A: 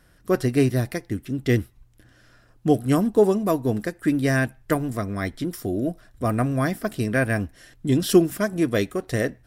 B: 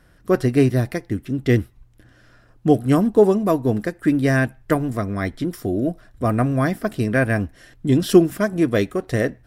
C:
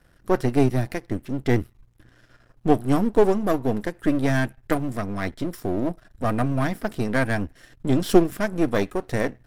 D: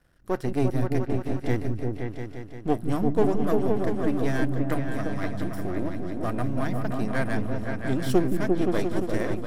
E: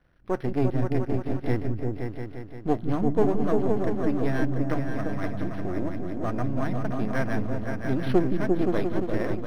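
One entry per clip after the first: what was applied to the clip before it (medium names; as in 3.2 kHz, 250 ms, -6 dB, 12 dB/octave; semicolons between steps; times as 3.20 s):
treble shelf 3.6 kHz -6.5 dB; trim +3.5 dB
partial rectifier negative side -12 dB
delay with an opening low-pass 174 ms, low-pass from 200 Hz, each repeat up 2 oct, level 0 dB; trim -6.5 dB
decimation joined by straight lines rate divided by 6×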